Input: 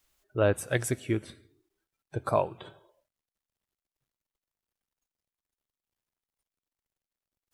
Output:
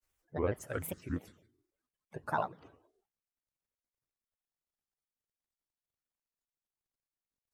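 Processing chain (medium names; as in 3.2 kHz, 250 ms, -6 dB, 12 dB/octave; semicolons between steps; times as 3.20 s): peaking EQ 3.3 kHz -12 dB 0.35 oct; granulator, spray 27 ms, pitch spread up and down by 7 st; trim -6.5 dB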